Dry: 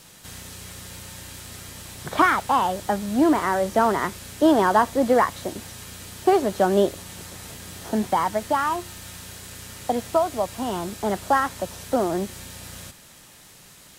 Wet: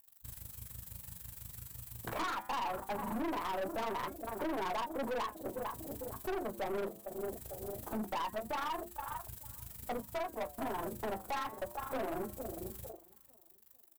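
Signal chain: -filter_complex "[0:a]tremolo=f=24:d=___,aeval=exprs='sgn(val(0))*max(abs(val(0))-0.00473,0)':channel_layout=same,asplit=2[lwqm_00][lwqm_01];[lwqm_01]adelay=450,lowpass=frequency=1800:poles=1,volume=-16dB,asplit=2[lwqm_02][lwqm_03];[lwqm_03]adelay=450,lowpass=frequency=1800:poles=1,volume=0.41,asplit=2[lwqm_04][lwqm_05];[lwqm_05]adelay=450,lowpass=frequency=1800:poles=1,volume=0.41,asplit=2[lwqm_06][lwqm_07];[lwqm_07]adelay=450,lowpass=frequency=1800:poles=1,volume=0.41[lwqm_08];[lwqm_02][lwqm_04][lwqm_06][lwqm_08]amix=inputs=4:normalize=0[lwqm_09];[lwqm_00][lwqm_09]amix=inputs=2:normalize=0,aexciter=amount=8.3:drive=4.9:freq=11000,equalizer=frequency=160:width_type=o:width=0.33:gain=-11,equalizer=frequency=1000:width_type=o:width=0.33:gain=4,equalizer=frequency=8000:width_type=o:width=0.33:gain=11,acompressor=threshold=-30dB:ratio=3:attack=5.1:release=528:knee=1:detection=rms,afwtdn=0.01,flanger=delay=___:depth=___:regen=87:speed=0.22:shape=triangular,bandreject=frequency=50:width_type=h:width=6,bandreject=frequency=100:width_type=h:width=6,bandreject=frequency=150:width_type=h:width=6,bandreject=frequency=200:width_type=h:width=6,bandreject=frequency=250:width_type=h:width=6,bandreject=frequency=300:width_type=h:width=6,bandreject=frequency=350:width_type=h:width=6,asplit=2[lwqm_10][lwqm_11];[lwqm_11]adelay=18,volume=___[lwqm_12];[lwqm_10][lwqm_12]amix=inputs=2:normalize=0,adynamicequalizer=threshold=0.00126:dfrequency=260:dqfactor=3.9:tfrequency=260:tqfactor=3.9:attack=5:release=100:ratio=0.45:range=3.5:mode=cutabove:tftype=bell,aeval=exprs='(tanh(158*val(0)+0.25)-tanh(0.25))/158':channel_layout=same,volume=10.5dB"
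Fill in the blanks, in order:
0.788, 2.2, 7.4, -11dB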